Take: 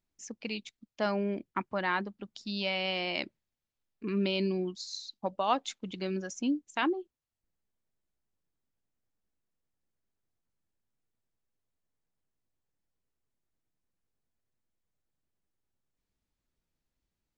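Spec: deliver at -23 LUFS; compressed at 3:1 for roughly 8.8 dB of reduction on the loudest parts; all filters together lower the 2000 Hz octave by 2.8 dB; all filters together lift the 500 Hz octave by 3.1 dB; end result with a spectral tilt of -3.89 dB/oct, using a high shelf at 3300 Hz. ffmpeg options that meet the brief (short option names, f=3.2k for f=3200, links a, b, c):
-af "equalizer=f=500:t=o:g=4.5,equalizer=f=2k:t=o:g=-5.5,highshelf=f=3.3k:g=4.5,acompressor=threshold=-35dB:ratio=3,volume=15.5dB"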